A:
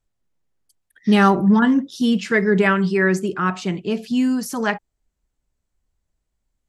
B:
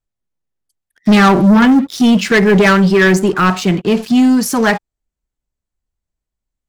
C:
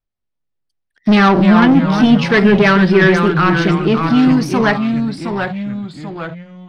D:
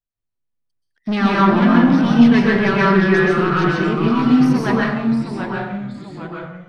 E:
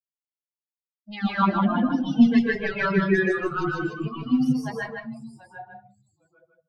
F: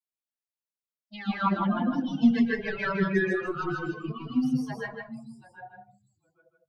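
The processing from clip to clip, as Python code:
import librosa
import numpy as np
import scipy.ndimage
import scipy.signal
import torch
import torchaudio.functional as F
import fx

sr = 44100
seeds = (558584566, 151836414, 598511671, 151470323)

y1 = fx.leveller(x, sr, passes=3)
y2 = scipy.signal.savgol_filter(y1, 15, 4, mode='constant')
y2 = fx.echo_pitch(y2, sr, ms=164, semitones=-2, count=3, db_per_echo=-6.0)
y2 = fx.hum_notches(y2, sr, base_hz=60, count=3)
y2 = y2 * librosa.db_to_amplitude(-1.5)
y3 = fx.rev_plate(y2, sr, seeds[0], rt60_s=0.81, hf_ratio=0.5, predelay_ms=115, drr_db=-4.5)
y3 = y3 * librosa.db_to_amplitude(-10.0)
y4 = fx.bin_expand(y3, sr, power=3.0)
y4 = y4 + 10.0 ** (-5.0 / 20.0) * np.pad(y4, (int(156 * sr / 1000.0), 0))[:len(y4)]
y4 = y4 * librosa.db_to_amplitude(-2.5)
y5 = fx.dispersion(y4, sr, late='lows', ms=43.0, hz=1700.0)
y5 = y5 * librosa.db_to_amplitude(-4.5)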